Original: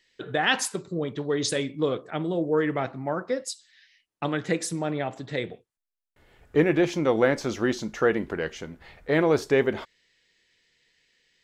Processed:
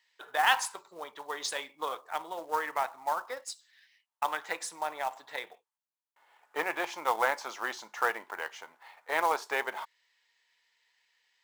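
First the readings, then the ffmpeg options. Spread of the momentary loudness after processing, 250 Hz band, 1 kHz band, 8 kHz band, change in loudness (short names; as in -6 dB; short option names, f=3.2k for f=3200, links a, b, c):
15 LU, -23.0 dB, +2.5 dB, -5.5 dB, -6.5 dB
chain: -af "aeval=exprs='0.447*(cos(1*acos(clip(val(0)/0.447,-1,1)))-cos(1*PI/2))+0.00282*(cos(3*acos(clip(val(0)/0.447,-1,1)))-cos(3*PI/2))+0.0126*(cos(7*acos(clip(val(0)/0.447,-1,1)))-cos(7*PI/2))':c=same,highpass=f=910:t=q:w=4,acrusher=bits=4:mode=log:mix=0:aa=0.000001,volume=-4.5dB"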